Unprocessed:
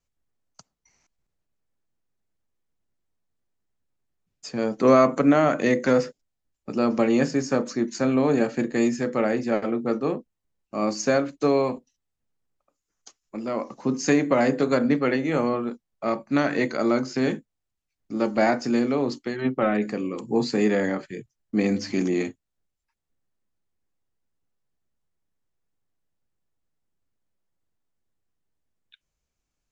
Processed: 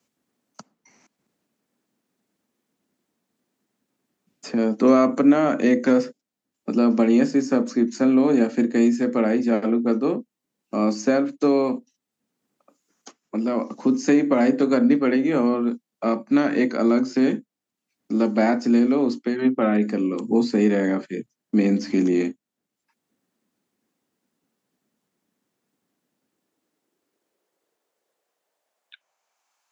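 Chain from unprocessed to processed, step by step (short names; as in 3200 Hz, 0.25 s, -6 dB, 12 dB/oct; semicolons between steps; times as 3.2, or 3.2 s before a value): high-pass sweep 230 Hz -> 880 Hz, 26.02–29.6; three-band squash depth 40%; gain -1.5 dB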